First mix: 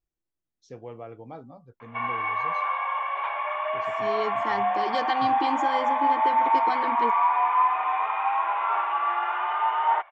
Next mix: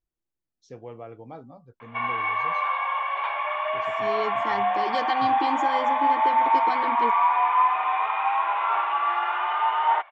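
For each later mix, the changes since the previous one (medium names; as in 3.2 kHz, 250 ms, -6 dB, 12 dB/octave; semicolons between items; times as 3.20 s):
background: remove distance through air 250 m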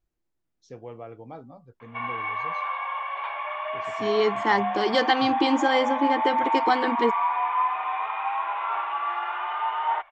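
second voice +8.5 dB; background -4.0 dB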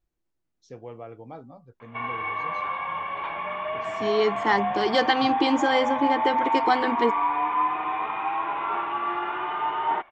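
background: remove high-pass 590 Hz 24 dB/octave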